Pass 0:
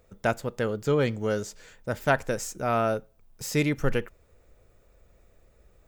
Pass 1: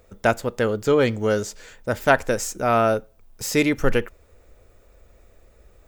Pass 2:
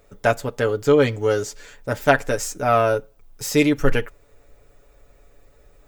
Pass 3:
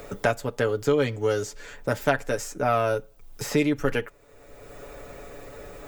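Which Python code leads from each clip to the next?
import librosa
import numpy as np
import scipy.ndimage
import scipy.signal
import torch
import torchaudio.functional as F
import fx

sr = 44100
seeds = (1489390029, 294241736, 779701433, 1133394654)

y1 = fx.peak_eq(x, sr, hz=150.0, db=-9.5, octaves=0.4)
y1 = F.gain(torch.from_numpy(y1), 6.5).numpy()
y2 = y1 + 0.67 * np.pad(y1, (int(7.0 * sr / 1000.0), 0))[:len(y1)]
y2 = F.gain(torch.from_numpy(y2), -1.0).numpy()
y3 = fx.band_squash(y2, sr, depth_pct=70)
y3 = F.gain(torch.from_numpy(y3), -4.5).numpy()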